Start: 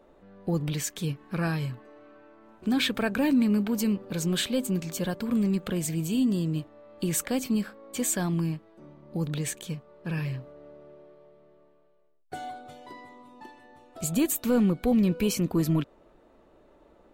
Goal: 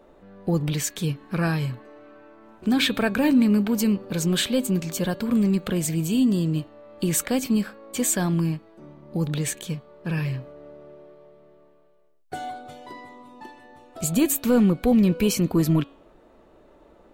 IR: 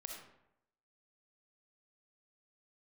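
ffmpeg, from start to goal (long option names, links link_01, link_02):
-af "bandreject=frequency=278.3:width_type=h:width=4,bandreject=frequency=556.6:width_type=h:width=4,bandreject=frequency=834.9:width_type=h:width=4,bandreject=frequency=1113.2:width_type=h:width=4,bandreject=frequency=1391.5:width_type=h:width=4,bandreject=frequency=1669.8:width_type=h:width=4,bandreject=frequency=1948.1:width_type=h:width=4,bandreject=frequency=2226.4:width_type=h:width=4,bandreject=frequency=2504.7:width_type=h:width=4,bandreject=frequency=2783:width_type=h:width=4,bandreject=frequency=3061.3:width_type=h:width=4,bandreject=frequency=3339.6:width_type=h:width=4,bandreject=frequency=3617.9:width_type=h:width=4,bandreject=frequency=3896.2:width_type=h:width=4,bandreject=frequency=4174.5:width_type=h:width=4,bandreject=frequency=4452.8:width_type=h:width=4,volume=4.5dB"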